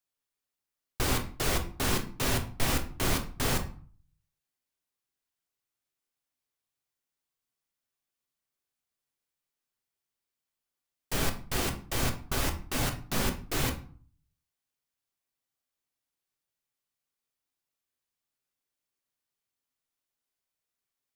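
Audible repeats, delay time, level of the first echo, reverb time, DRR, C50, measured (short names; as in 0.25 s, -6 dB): none, none, none, 0.45 s, 4.5 dB, 12.0 dB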